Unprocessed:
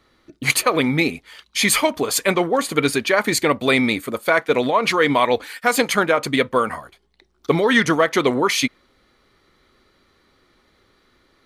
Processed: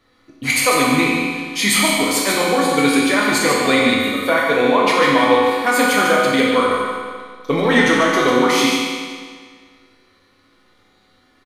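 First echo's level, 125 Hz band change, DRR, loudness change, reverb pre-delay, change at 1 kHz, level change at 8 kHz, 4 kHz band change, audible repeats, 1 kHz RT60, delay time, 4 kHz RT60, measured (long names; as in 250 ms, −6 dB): −5.5 dB, 0.0 dB, −6.0 dB, +3.5 dB, 4 ms, +4.5 dB, +3.0 dB, +4.0 dB, 1, 1.8 s, 147 ms, 1.7 s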